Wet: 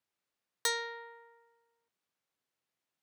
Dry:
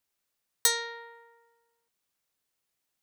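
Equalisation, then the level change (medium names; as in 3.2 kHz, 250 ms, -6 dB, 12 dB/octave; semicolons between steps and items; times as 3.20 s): high-pass 96 Hz; low-pass 3 kHz 6 dB/octave; -1.5 dB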